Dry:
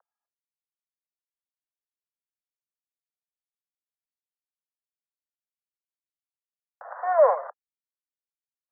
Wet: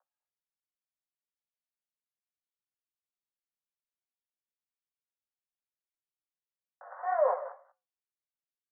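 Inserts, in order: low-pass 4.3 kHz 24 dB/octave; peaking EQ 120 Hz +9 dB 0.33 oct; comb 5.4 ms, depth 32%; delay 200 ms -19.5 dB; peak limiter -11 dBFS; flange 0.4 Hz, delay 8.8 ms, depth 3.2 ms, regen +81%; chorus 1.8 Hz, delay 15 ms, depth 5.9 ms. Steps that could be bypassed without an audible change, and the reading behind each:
low-pass 4.3 kHz: input has nothing above 1.9 kHz; peaking EQ 120 Hz: input has nothing below 430 Hz

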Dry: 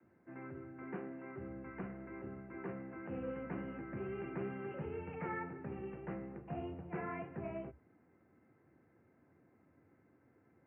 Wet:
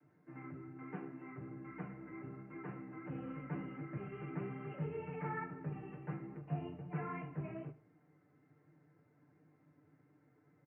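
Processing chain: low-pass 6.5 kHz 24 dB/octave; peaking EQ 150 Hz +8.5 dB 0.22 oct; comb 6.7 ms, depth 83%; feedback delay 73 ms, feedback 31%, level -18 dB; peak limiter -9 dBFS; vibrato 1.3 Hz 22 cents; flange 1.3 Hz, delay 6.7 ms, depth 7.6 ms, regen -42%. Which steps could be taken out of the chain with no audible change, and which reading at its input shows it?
low-pass 6.5 kHz: input has nothing above 2.4 kHz; peak limiter -9 dBFS: peak at its input -24.0 dBFS

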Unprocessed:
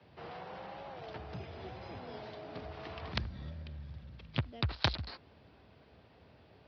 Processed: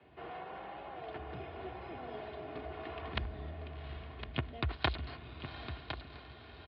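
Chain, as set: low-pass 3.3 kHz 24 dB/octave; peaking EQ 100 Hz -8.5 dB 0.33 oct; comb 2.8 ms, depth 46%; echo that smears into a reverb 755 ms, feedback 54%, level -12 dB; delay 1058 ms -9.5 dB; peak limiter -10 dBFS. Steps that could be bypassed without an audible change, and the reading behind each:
peak limiter -10 dBFS: peak at its input -15.0 dBFS

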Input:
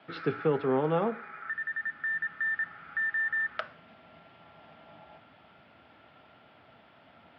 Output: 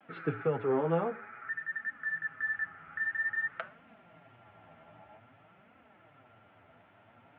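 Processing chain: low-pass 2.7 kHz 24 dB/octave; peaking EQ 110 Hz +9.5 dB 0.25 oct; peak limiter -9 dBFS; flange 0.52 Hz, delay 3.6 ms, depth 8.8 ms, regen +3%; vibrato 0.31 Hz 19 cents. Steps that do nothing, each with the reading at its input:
peak limiter -9 dBFS: peak at its input -15.5 dBFS

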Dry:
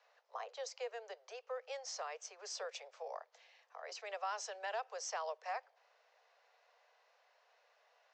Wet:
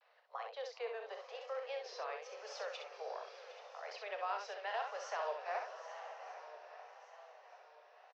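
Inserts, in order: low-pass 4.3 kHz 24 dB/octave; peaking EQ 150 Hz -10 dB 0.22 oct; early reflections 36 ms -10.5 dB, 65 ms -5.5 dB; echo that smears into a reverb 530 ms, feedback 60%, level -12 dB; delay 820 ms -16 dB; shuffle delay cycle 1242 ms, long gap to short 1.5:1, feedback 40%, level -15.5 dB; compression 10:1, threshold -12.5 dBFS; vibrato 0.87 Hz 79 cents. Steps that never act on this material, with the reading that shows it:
peaking EQ 150 Hz: input has nothing below 360 Hz; compression, threshold -12.5 dBFS: peak at its input -27.0 dBFS

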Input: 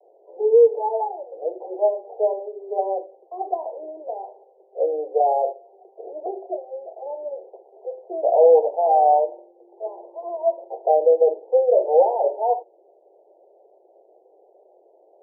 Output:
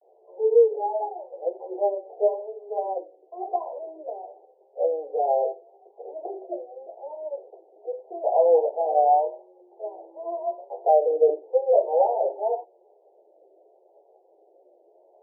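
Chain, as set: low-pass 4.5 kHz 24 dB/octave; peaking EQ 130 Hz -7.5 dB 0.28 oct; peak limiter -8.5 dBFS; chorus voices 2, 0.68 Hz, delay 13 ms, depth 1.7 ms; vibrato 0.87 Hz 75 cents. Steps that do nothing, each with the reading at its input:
low-pass 4.5 kHz: input has nothing above 960 Hz; peaking EQ 130 Hz: input has nothing below 300 Hz

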